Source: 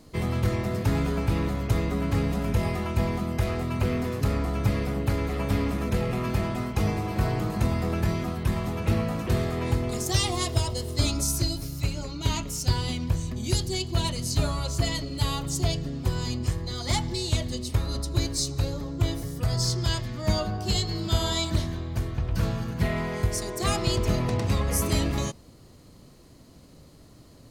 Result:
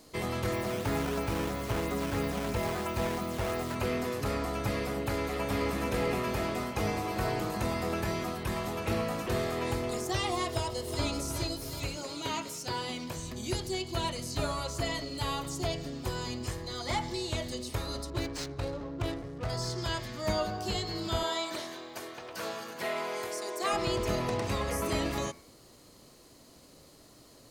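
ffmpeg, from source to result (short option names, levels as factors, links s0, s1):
-filter_complex "[0:a]asplit=3[s0][s1][s2];[s0]afade=t=out:st=0.51:d=0.02[s3];[s1]acrusher=samples=9:mix=1:aa=0.000001:lfo=1:lforange=14.4:lforate=3,afade=t=in:st=0.51:d=0.02,afade=t=out:st=3.74:d=0.02[s4];[s2]afade=t=in:st=3.74:d=0.02[s5];[s3][s4][s5]amix=inputs=3:normalize=0,asplit=2[s6][s7];[s7]afade=t=in:st=5.16:d=0.01,afade=t=out:st=5.76:d=0.01,aecho=0:1:440|880|1320|1760|2200|2640|3080|3520:0.562341|0.337405|0.202443|0.121466|0.0728794|0.0437277|0.0262366|0.015742[s8];[s6][s8]amix=inputs=2:normalize=0,asplit=2[s9][s10];[s10]afade=t=in:st=10.5:d=0.01,afade=t=out:st=11.1:d=0.01,aecho=0:1:370|740|1110|1480|1850|2220|2590|2960:0.421697|0.253018|0.151811|0.0910864|0.0546519|0.0327911|0.0196747|0.0118048[s11];[s9][s11]amix=inputs=2:normalize=0,asettb=1/sr,asplit=3[s12][s13][s14];[s12]atrim=end=11.974[s15];[s13]atrim=start=11.97:end=13.17,asetpts=PTS-STARTPTS,afade=t=in:d=0.004:c=qsin,afade=t=out:st=1.196:d=0.004:c=qsin,highpass=160[s16];[s14]atrim=start=13.166[s17];[s15][s16]acrossfade=d=0.004:c1=hsin:c2=qsin[s18];[s18][s17]acrossfade=d=0.004:c1=qsin:c2=hsin,asettb=1/sr,asplit=3[s19][s20][s21];[s19]atrim=end=18.104[s22];[s20]atrim=start=18.1:end=19.5,asetpts=PTS-STARTPTS,afade=t=in:d=0.004:c=qsin,afade=t=out:st=1.396:d=0.004:c=qsin,adynamicsmooth=sensitivity=7.5:basefreq=740[s23];[s21]atrim=start=19.496[s24];[s22][s23]acrossfade=d=0.004:c1=hsin:c2=qsin[s25];[s25][s24]acrossfade=d=0.004:c1=qsin:c2=hsin,asettb=1/sr,asplit=3[s26][s27][s28];[s26]atrim=end=21.234[s29];[s27]atrim=start=21.23:end=23.73,asetpts=PTS-STARTPTS,afade=t=in:d=0.004:c=qsin,afade=t=out:st=2.496:d=0.004:c=qsin,highpass=370[s30];[s28]atrim=start=23.726[s31];[s29][s30]acrossfade=d=0.004:c1=hsin:c2=qsin[s32];[s32][s31]acrossfade=d=0.004:c1=qsin:c2=hsin,bandreject=f=85.64:t=h:w=4,bandreject=f=171.28:t=h:w=4,bandreject=f=256.92:t=h:w=4,bandreject=f=342.56:t=h:w=4,bandreject=f=428.2:t=h:w=4,bandreject=f=513.84:t=h:w=4,bandreject=f=599.48:t=h:w=4,bandreject=f=685.12:t=h:w=4,bandreject=f=770.76:t=h:w=4,bandreject=f=856.4:t=h:w=4,bandreject=f=942.04:t=h:w=4,bandreject=f=1027.68:t=h:w=4,bandreject=f=1113.32:t=h:w=4,bandreject=f=1198.96:t=h:w=4,bandreject=f=1284.6:t=h:w=4,bandreject=f=1370.24:t=h:w=4,bandreject=f=1455.88:t=h:w=4,bandreject=f=1541.52:t=h:w=4,bandreject=f=1627.16:t=h:w=4,bandreject=f=1712.8:t=h:w=4,bandreject=f=1798.44:t=h:w=4,bandreject=f=1884.08:t=h:w=4,bandreject=f=1969.72:t=h:w=4,bandreject=f=2055.36:t=h:w=4,bandreject=f=2141:t=h:w=4,bandreject=f=2226.64:t=h:w=4,bandreject=f=2312.28:t=h:w=4,bandreject=f=2397.92:t=h:w=4,acrossover=split=2700[s33][s34];[s34]acompressor=threshold=0.00794:ratio=4:attack=1:release=60[s35];[s33][s35]amix=inputs=2:normalize=0,bass=f=250:g=-11,treble=f=4000:g=3"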